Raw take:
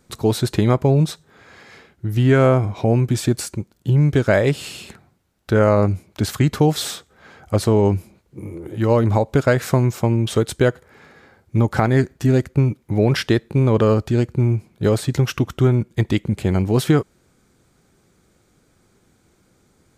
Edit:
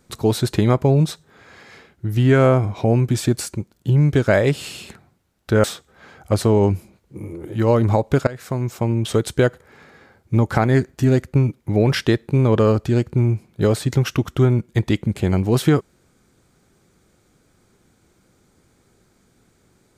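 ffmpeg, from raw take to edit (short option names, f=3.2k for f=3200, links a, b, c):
-filter_complex "[0:a]asplit=3[a][b][c];[a]atrim=end=5.642[d];[b]atrim=start=6.858:end=9.49,asetpts=PTS-STARTPTS,afade=t=out:st=2.628:d=0.004:c=hsin:silence=0.1[e];[c]atrim=start=9.49,asetpts=PTS-STARTPTS,afade=t=in:d=1.15:c=qsin:silence=0.1[f];[e][f]concat=n=2:v=0:a=1[g];[d][g]acrossfade=d=0.004:c1=hsin:c2=hsin"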